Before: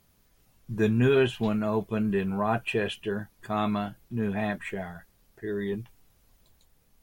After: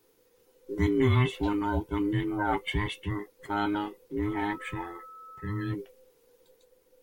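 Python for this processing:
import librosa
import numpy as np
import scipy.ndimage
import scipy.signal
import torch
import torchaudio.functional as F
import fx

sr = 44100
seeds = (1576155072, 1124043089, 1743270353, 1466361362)

y = fx.band_invert(x, sr, width_hz=500)
y = fx.dmg_tone(y, sr, hz=1300.0, level_db=-43.0, at=(4.25, 5.72), fade=0.02)
y = F.gain(torch.from_numpy(y), -1.5).numpy()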